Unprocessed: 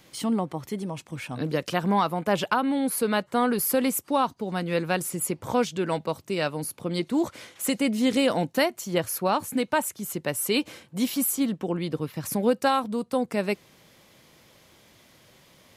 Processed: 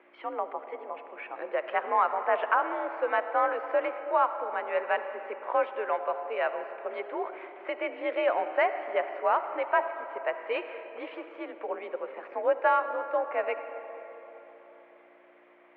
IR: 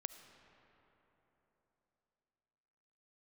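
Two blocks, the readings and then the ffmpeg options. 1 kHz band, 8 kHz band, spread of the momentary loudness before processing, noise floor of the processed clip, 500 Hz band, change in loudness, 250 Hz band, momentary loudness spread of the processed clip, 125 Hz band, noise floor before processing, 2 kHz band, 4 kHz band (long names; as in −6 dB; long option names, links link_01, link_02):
+0.5 dB, below −40 dB, 8 LU, −57 dBFS, −1.5 dB, −3.5 dB, −19.0 dB, 14 LU, below −40 dB, −58 dBFS, −0.5 dB, −15.0 dB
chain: -filter_complex "[0:a]aeval=exprs='val(0)+0.0158*(sin(2*PI*60*n/s)+sin(2*PI*2*60*n/s)/2+sin(2*PI*3*60*n/s)/3+sin(2*PI*4*60*n/s)/4+sin(2*PI*5*60*n/s)/5)':channel_layout=same[link_01];[1:a]atrim=start_sample=2205[link_02];[link_01][link_02]afir=irnorm=-1:irlink=0,highpass=frequency=440:width_type=q:width=0.5412,highpass=frequency=440:width_type=q:width=1.307,lowpass=frequency=2300:width_type=q:width=0.5176,lowpass=frequency=2300:width_type=q:width=0.7071,lowpass=frequency=2300:width_type=q:width=1.932,afreqshift=54,volume=3.5dB"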